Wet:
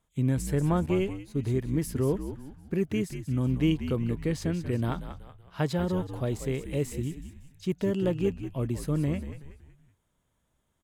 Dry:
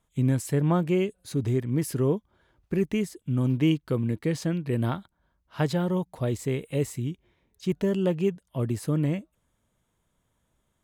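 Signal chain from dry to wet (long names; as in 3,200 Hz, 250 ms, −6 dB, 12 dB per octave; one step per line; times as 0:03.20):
echo with shifted repeats 187 ms, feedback 42%, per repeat −74 Hz, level −10 dB
0:00.86–0:02.06: downward expander −27 dBFS
level −2.5 dB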